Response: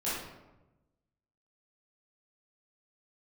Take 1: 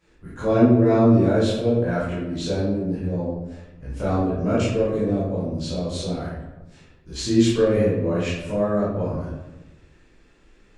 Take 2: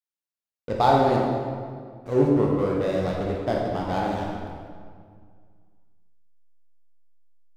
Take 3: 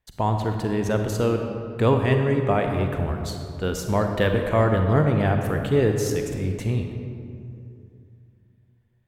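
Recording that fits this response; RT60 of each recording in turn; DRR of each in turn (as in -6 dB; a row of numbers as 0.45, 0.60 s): 1; 1.0, 2.0, 2.6 s; -11.0, -3.0, 4.0 dB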